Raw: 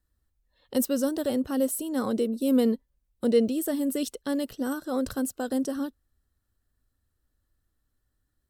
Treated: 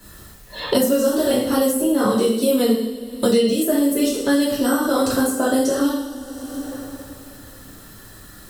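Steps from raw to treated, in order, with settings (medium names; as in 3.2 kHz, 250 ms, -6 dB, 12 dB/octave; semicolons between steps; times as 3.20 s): two-slope reverb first 0.65 s, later 2.6 s, from -26 dB, DRR -10 dB; three bands compressed up and down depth 100%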